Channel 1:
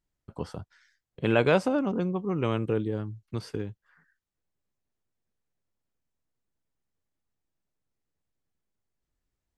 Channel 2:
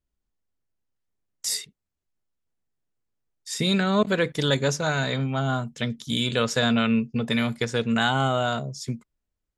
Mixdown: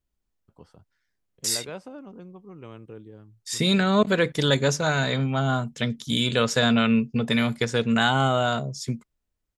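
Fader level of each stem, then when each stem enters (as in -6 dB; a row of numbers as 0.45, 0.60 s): -15.0, +1.5 dB; 0.20, 0.00 s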